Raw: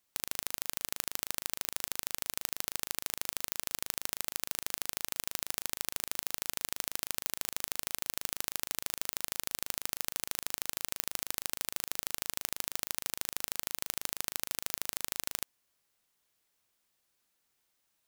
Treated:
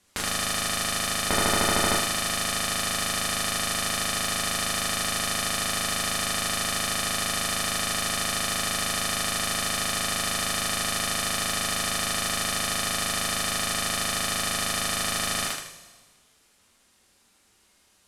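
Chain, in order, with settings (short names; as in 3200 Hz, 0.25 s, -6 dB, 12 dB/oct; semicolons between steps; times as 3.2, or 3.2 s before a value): low shelf 420 Hz +7 dB; thinning echo 78 ms, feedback 28%, high-pass 400 Hz, level -3 dB; 1.29–1.98 sample leveller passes 5; LPF 11000 Hz 24 dB/oct; two-slope reverb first 0.34 s, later 1.5 s, from -15 dB, DRR 1.5 dB; dynamic EQ 1600 Hz, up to +4 dB, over -56 dBFS, Q 1.1; maximiser +13 dB; slew limiter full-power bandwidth 630 Hz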